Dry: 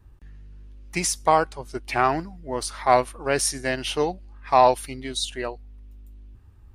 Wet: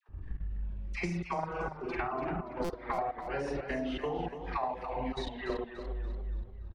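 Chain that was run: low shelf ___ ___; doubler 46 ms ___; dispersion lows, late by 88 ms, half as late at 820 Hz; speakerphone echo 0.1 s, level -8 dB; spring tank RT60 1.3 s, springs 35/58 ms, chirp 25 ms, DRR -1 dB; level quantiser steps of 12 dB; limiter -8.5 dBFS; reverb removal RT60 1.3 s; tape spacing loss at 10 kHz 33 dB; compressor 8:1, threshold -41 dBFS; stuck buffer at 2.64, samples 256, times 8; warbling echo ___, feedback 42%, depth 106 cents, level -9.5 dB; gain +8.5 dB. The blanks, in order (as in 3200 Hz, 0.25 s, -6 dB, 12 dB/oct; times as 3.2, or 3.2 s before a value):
73 Hz, +8 dB, -3 dB, 0.287 s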